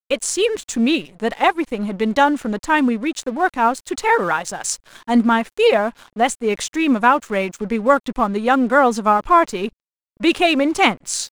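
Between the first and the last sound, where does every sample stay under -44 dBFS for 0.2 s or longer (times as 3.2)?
9.69–10.17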